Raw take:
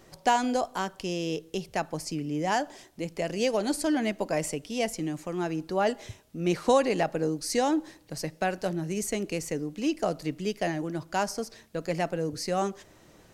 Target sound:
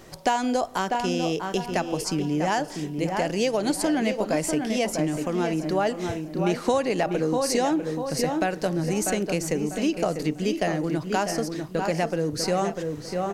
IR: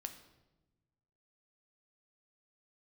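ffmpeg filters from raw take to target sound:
-filter_complex "[0:a]asplit=2[link_01][link_02];[link_02]adelay=645,lowpass=frequency=2200:poles=1,volume=-7dB,asplit=2[link_03][link_04];[link_04]adelay=645,lowpass=frequency=2200:poles=1,volume=0.31,asplit=2[link_05][link_06];[link_06]adelay=645,lowpass=frequency=2200:poles=1,volume=0.31,asplit=2[link_07][link_08];[link_08]adelay=645,lowpass=frequency=2200:poles=1,volume=0.31[link_09];[link_03][link_05][link_07][link_09]amix=inputs=4:normalize=0[link_10];[link_01][link_10]amix=inputs=2:normalize=0,acompressor=threshold=-30dB:ratio=2.5,asplit=2[link_11][link_12];[link_12]aecho=0:1:678:0.168[link_13];[link_11][link_13]amix=inputs=2:normalize=0,volume=7.5dB"

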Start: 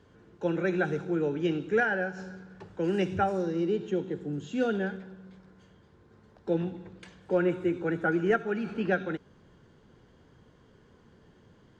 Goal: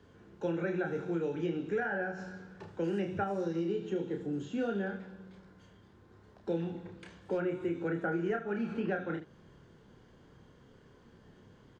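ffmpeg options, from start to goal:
ffmpeg -i in.wav -filter_complex "[0:a]aecho=1:1:30|75:0.596|0.2,acrossover=split=100|2100[link_01][link_02][link_03];[link_01]acompressor=threshold=-58dB:ratio=4[link_04];[link_02]acompressor=threshold=-29dB:ratio=4[link_05];[link_03]acompressor=threshold=-55dB:ratio=4[link_06];[link_04][link_05][link_06]amix=inputs=3:normalize=0,volume=-1.5dB" out.wav

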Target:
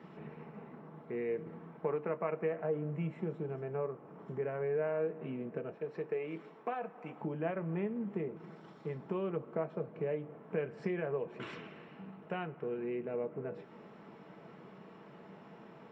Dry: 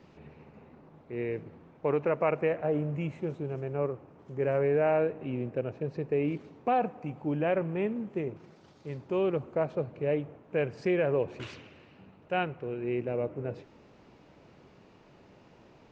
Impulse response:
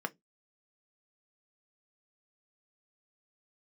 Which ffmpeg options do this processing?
-filter_complex "[0:a]asettb=1/sr,asplit=3[link_01][link_02][link_03];[link_01]atrim=end=5.744[link_04];[link_02]atrim=start=5.74:end=7.21,asetpts=PTS-STARTPTS,afade=type=in:duration=0.004:curve=qsin,afade=type=out:start_time=1.466:duration=0.004:curve=qsin,highpass=frequency=710:poles=1[link_05];[link_03]atrim=start=7.206[link_06];[link_04][link_05]acrossfade=duration=0.004:curve1=hsin:curve2=qsin[link_07];[link_07][link_06]acrossfade=duration=0.004:curve1=qsin:curve2=hsin,acompressor=threshold=-40dB:ratio=3[link_08];[1:a]atrim=start_sample=2205[link_09];[link_08][link_09]afir=irnorm=-1:irlink=0"

